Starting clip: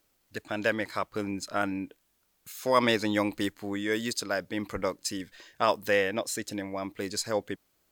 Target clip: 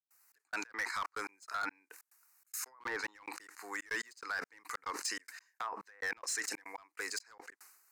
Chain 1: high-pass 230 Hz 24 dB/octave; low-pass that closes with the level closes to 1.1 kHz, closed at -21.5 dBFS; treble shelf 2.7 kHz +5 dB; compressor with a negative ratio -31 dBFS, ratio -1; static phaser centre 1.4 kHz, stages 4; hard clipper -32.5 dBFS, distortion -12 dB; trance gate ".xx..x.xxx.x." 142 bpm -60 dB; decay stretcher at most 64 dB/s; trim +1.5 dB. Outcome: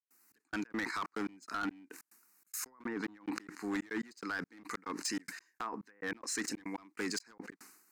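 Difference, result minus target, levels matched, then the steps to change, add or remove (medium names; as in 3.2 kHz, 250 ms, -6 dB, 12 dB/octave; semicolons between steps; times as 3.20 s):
250 Hz band +14.0 dB
change: high-pass 520 Hz 24 dB/octave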